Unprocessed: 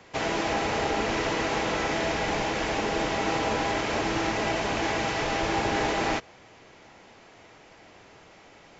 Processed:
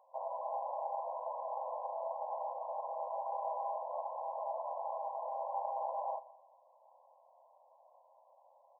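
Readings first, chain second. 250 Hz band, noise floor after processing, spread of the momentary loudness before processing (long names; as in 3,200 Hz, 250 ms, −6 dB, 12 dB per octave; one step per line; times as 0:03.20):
below −40 dB, −66 dBFS, 2 LU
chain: linear-phase brick-wall band-pass 510–1,100 Hz
repeating echo 125 ms, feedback 44%, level −19 dB
level −8 dB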